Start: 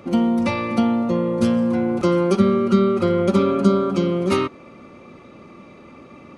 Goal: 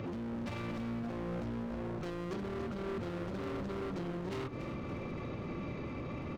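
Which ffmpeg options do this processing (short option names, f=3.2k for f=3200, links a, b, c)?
-filter_complex "[0:a]lowpass=5.4k,equalizer=f=310:t=o:w=1.3:g=5,bandreject=f=1.2k:w=30,aresample=16000,asoftclip=type=tanh:threshold=-18dB,aresample=44100,lowshelf=f=170:t=q:w=1.5:g=9,acompressor=threshold=-31dB:ratio=4,asoftclip=type=hard:threshold=-35dB,highpass=49,alimiter=level_in=15.5dB:limit=-24dB:level=0:latency=1:release=99,volume=-15.5dB,asplit=8[a][b][c][d][e][f][g][h];[b]adelay=284,afreqshift=-57,volume=-9.5dB[i];[c]adelay=568,afreqshift=-114,volume=-14.5dB[j];[d]adelay=852,afreqshift=-171,volume=-19.6dB[k];[e]adelay=1136,afreqshift=-228,volume=-24.6dB[l];[f]adelay=1420,afreqshift=-285,volume=-29.6dB[m];[g]adelay=1704,afreqshift=-342,volume=-34.7dB[n];[h]adelay=1988,afreqshift=-399,volume=-39.7dB[o];[a][i][j][k][l][m][n][o]amix=inputs=8:normalize=0,volume=5.5dB"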